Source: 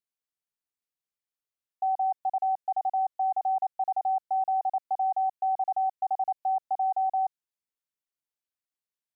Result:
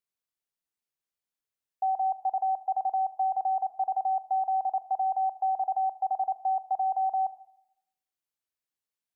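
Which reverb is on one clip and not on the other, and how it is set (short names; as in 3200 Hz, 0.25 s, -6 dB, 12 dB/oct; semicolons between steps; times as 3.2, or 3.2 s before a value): Schroeder reverb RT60 0.79 s, combs from 26 ms, DRR 14 dB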